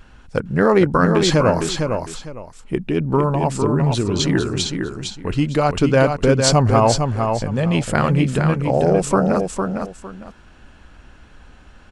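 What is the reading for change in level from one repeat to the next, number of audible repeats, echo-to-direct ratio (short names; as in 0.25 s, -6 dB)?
-12.5 dB, 2, -5.5 dB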